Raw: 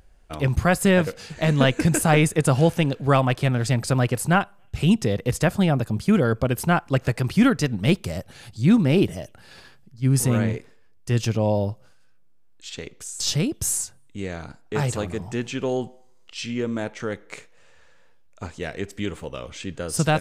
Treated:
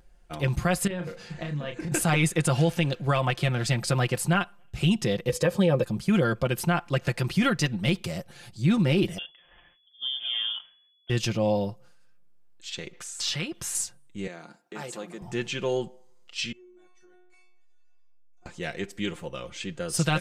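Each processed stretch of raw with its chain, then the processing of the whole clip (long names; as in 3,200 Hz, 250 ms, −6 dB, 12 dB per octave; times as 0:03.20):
0:00.87–0:01.92: high-shelf EQ 5,400 Hz −12 dB + downward compressor 12 to 1, threshold −27 dBFS + double-tracking delay 34 ms −6 dB
0:05.29–0:05.84: parametric band 500 Hz +15 dB 0.5 octaves + notch comb filter 700 Hz
0:09.18–0:11.10: voice inversion scrambler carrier 3,400 Hz + downward compressor 5 to 1, threshold −31 dBFS + multiband upward and downward expander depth 70%
0:12.93–0:13.75: parametric band 1,600 Hz +12.5 dB 2.9 octaves + downward compressor 2 to 1, threshold −35 dBFS
0:14.27–0:15.22: high-pass filter 200 Hz 24 dB per octave + downward compressor 1.5 to 1, threshold −41 dBFS
0:16.52–0:18.46: stiff-string resonator 360 Hz, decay 0.5 s, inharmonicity 0.002 + downward compressor 5 to 1, threshold −51 dBFS
whole clip: dynamic equaliser 3,200 Hz, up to +6 dB, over −40 dBFS, Q 0.74; comb filter 5.7 ms, depth 60%; brickwall limiter −9.5 dBFS; level −4.5 dB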